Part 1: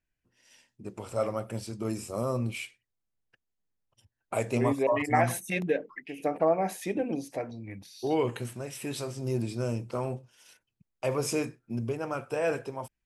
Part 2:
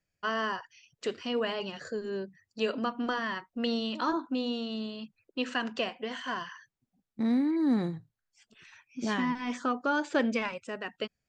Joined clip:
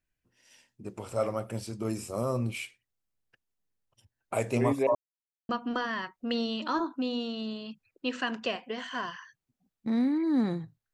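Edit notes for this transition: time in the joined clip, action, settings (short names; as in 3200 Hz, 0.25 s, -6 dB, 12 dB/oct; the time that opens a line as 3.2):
part 1
4.95–5.49 mute
5.49 switch to part 2 from 2.82 s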